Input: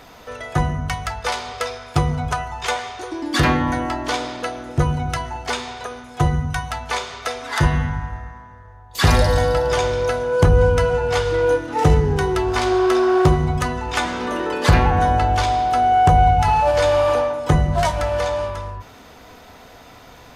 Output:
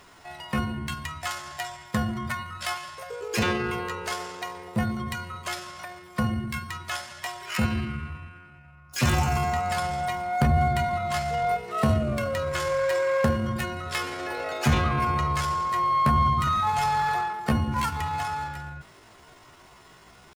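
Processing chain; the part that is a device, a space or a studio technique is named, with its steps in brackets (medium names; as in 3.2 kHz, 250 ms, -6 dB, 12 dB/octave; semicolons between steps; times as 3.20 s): chipmunk voice (pitch shift +6.5 st); trim -8 dB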